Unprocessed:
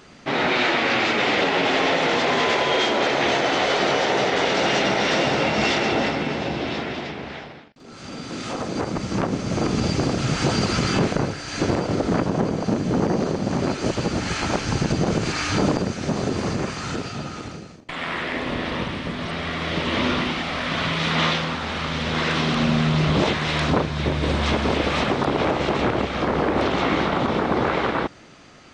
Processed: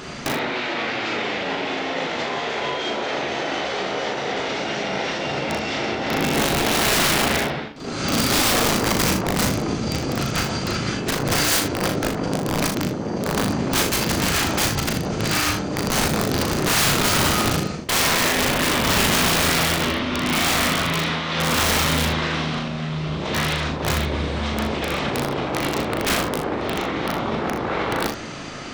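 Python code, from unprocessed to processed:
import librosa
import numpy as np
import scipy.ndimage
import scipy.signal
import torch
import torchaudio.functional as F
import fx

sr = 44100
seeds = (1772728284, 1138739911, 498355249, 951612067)

y = fx.over_compress(x, sr, threshold_db=-30.0, ratio=-1.0)
y = (np.mod(10.0 ** (20.0 / 20.0) * y + 1.0, 2.0) - 1.0) / 10.0 ** (20.0 / 20.0)
y = fx.room_early_taps(y, sr, ms=(37, 64, 78), db=(-4.0, -10.5, -11.5))
y = F.gain(torch.from_numpy(y), 5.5).numpy()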